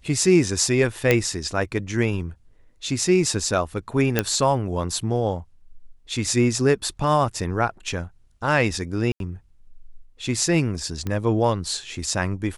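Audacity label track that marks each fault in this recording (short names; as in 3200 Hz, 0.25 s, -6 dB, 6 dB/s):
1.110000	1.110000	pop -4 dBFS
4.190000	4.190000	pop -4 dBFS
9.120000	9.200000	gap 82 ms
11.070000	11.070000	pop -15 dBFS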